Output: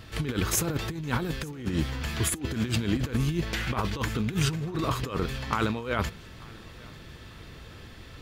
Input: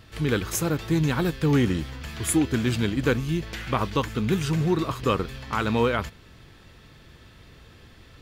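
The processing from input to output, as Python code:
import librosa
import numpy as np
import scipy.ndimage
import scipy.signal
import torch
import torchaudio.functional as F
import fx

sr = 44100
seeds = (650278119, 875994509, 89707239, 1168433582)

p1 = fx.over_compress(x, sr, threshold_db=-27.0, ratio=-0.5)
y = p1 + fx.echo_feedback(p1, sr, ms=892, feedback_pct=42, wet_db=-24.0, dry=0)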